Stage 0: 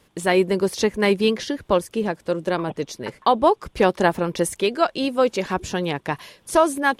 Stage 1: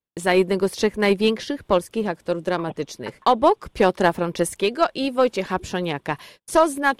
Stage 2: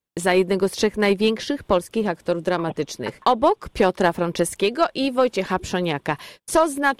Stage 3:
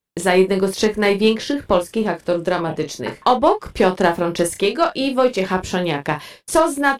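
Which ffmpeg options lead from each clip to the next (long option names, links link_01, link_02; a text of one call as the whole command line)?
ffmpeg -i in.wav -af "adynamicequalizer=threshold=0.00282:dfrequency=6400:dqfactor=2.8:tfrequency=6400:tqfactor=2.8:attack=5:release=100:ratio=0.375:range=2:mode=cutabove:tftype=bell,aeval=exprs='0.631*(cos(1*acos(clip(val(0)/0.631,-1,1)))-cos(1*PI/2))+0.0398*(cos(2*acos(clip(val(0)/0.631,-1,1)))-cos(2*PI/2))+0.0224*(cos(5*acos(clip(val(0)/0.631,-1,1)))-cos(5*PI/2))+0.0282*(cos(7*acos(clip(val(0)/0.631,-1,1)))-cos(7*PI/2))':channel_layout=same,agate=range=-34dB:threshold=-46dB:ratio=16:detection=peak" out.wav
ffmpeg -i in.wav -af "acompressor=threshold=-25dB:ratio=1.5,volume=4dB" out.wav
ffmpeg -i in.wav -af "aecho=1:1:32|53:0.447|0.158,volume=2dB" out.wav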